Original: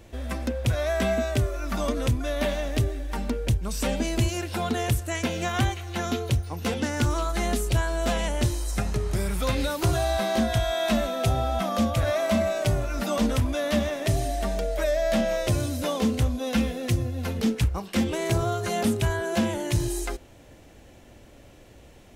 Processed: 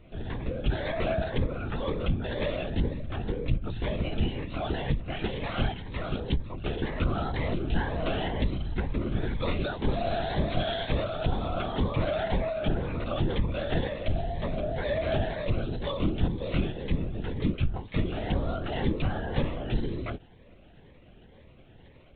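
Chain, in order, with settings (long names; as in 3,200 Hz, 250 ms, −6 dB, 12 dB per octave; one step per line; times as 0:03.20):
linear-prediction vocoder at 8 kHz whisper
phaser whose notches keep moving one way rising 2 Hz
level −2.5 dB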